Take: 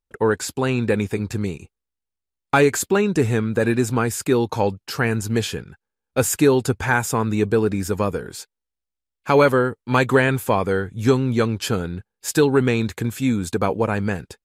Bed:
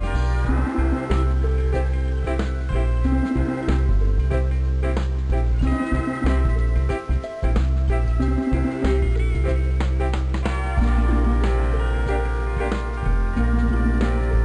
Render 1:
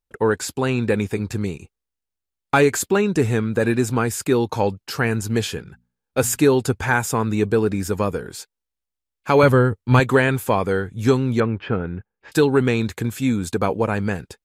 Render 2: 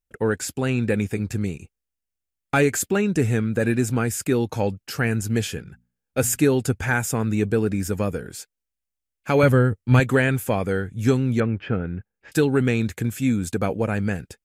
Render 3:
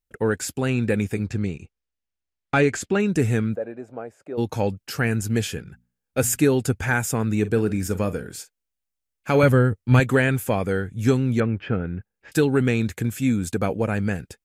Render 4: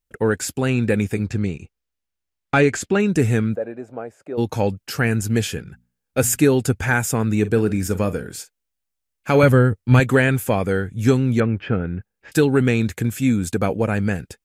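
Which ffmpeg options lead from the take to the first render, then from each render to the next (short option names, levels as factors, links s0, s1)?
-filter_complex "[0:a]asettb=1/sr,asplit=3[s0][s1][s2];[s0]atrim=end=5.524[s3];[s1]atrim=start=5.52:end=6.44,asetpts=PTS-STARTPTS,afade=t=in:d=0.004:c=qsin,afade=t=out:st=0.916:d=0.004:c=qsin,bandreject=f=60:t=h:w=6,bandreject=f=120:t=h:w=6,bandreject=f=180:t=h:w=6,bandreject=f=240:t=h:w=6[s4];[s2]atrim=start=6.436[s5];[s3][s4]acrossfade=d=0.004:c1=hsin:c2=qsin[s6];[s6][s5]acrossfade=d=0.004:c1=qsin:c2=hsin,asettb=1/sr,asplit=3[s7][s8][s9];[s7]atrim=end=9.434[s10];[s8]atrim=start=9.43:end=10,asetpts=PTS-STARTPTS,afade=t=in:d=0.004:c=qsin,afade=t=out:st=0.566:d=0.004:c=qsin,equalizer=f=85:w=0.77:g=13.5[s11];[s9]atrim=start=9.996[s12];[s10][s11]acrossfade=d=0.004:c1=hsin:c2=qsin[s13];[s13][s12]acrossfade=d=0.004:c1=qsin:c2=hsin,asettb=1/sr,asplit=3[s14][s15][s16];[s14]atrim=end=11.404[s17];[s15]atrim=start=11.4:end=12.32,asetpts=PTS-STARTPTS,afade=t=in:d=0.004:c=qsin,afade=t=out:st=0.916:d=0.004:c=qsin,lowpass=f=2400:w=0.5412,lowpass=f=2400:w=1.3066[s18];[s16]atrim=start=12.316[s19];[s17][s18]acrossfade=d=0.004:c1=hsin:c2=qsin[s20];[s20][s19]acrossfade=d=0.004:c1=qsin:c2=hsin"
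-af "equalizer=f=400:t=o:w=0.67:g=-4,equalizer=f=1000:t=o:w=0.67:g=-10,equalizer=f=4000:t=o:w=0.67:g=-6"
-filter_complex "[0:a]asettb=1/sr,asplit=3[s0][s1][s2];[s0]atrim=end=1.274[s3];[s1]atrim=start=1.27:end=3,asetpts=PTS-STARTPTS,afade=t=in:d=0.004:c=qsin,afade=t=out:st=1.726:d=0.004:c=qsin,lowpass=5500[s4];[s2]atrim=start=2.996[s5];[s3][s4]acrossfade=d=0.004:c1=hsin:c2=qsin[s6];[s6][s5]acrossfade=d=0.004:c1=qsin:c2=hsin,asplit=3[s7][s8][s9];[s7]afade=t=out:st=3.54:d=0.02[s10];[s8]bandpass=f=620:t=q:w=3.3,afade=t=in:st=3.54:d=0.02,afade=t=out:st=4.37:d=0.02[s11];[s9]afade=t=in:st=4.37:d=0.02[s12];[s10][s11][s12]amix=inputs=3:normalize=0,asettb=1/sr,asplit=3[s13][s14][s15];[s13]atrim=end=7.404[s16];[s14]atrim=start=7.4:end=9.42,asetpts=PTS-STARTPTS,afade=t=in:d=0.004:c=qsin,afade=t=out:st=2.016:d=0.004:c=qsin,asplit=2[s17][s18];[s18]adelay=43,volume=0.2[s19];[s17][s19]amix=inputs=2:normalize=0,atrim=end_sample=89082[s20];[s15]atrim=start=9.416[s21];[s16][s20]acrossfade=d=0.004:c1=hsin:c2=qsin[s22];[s22][s21]acrossfade=d=0.004:c1=qsin:c2=hsin"
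-af "volume=1.41,alimiter=limit=0.794:level=0:latency=1"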